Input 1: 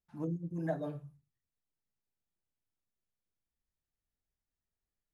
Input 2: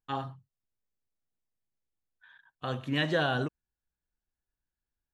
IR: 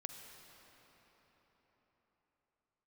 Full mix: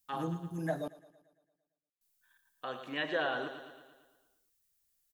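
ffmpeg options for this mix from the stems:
-filter_complex "[0:a]crystalizer=i=6.5:c=0,volume=0.944,asplit=3[s0][s1][s2];[s0]atrim=end=0.88,asetpts=PTS-STARTPTS,afade=t=out:st=0.876:d=0.004:c=hsin[s3];[s1]atrim=start=0.88:end=2.01,asetpts=PTS-STARTPTS,volume=0[s4];[s2]atrim=start=2.01,asetpts=PTS-STARTPTS,afade=t=in:d=0.004:c=hsin[s5];[s3][s4][s5]concat=n=3:v=0:a=1,asplit=2[s6][s7];[s7]volume=0.0944[s8];[1:a]agate=range=0.251:threshold=0.00178:ratio=16:detection=peak,highpass=390,volume=0.668,asplit=2[s9][s10];[s10]volume=0.299[s11];[s8][s11]amix=inputs=2:normalize=0,aecho=0:1:113|226|339|452|565|678|791|904|1017:1|0.57|0.325|0.185|0.106|0.0602|0.0343|0.0195|0.0111[s12];[s6][s9][s12]amix=inputs=3:normalize=0,acrossover=split=3400[s13][s14];[s14]acompressor=threshold=0.00141:ratio=4:attack=1:release=60[s15];[s13][s15]amix=inputs=2:normalize=0"

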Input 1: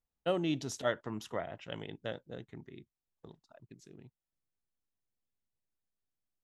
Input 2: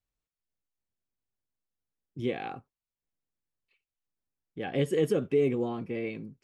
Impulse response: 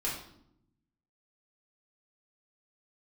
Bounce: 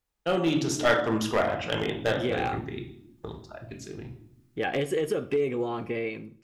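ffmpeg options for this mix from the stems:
-filter_complex "[0:a]highpass=40,asubboost=boost=11:cutoff=56,volume=1.26,asplit=2[s0][s1];[s1]volume=0.668[s2];[1:a]equalizer=f=180:t=o:w=1.8:g=-7.5,acompressor=threshold=0.0158:ratio=4,volume=1,asplit=2[s3][s4];[s4]volume=0.158[s5];[2:a]atrim=start_sample=2205[s6];[s2][s5]amix=inputs=2:normalize=0[s7];[s7][s6]afir=irnorm=-1:irlink=0[s8];[s0][s3][s8]amix=inputs=3:normalize=0,equalizer=f=1400:t=o:w=1.2:g=2.5,dynaudnorm=f=330:g=5:m=2.82,aeval=exprs='clip(val(0),-1,0.119)':c=same"

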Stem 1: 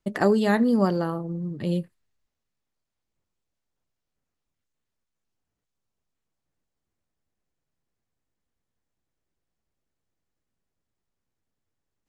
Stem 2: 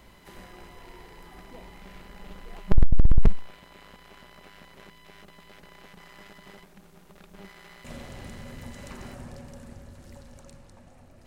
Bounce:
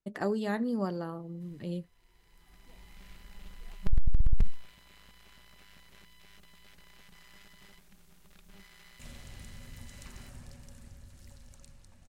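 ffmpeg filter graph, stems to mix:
-filter_complex "[0:a]volume=0.299,asplit=2[s0][s1];[1:a]equalizer=f=500:w=0.31:g=-13.5,adelay=1150,volume=0.891[s2];[s1]apad=whole_len=547721[s3];[s2][s3]sidechaincompress=threshold=0.00355:ratio=8:attack=16:release=919[s4];[s0][s4]amix=inputs=2:normalize=0,alimiter=limit=0.168:level=0:latency=1:release=17"

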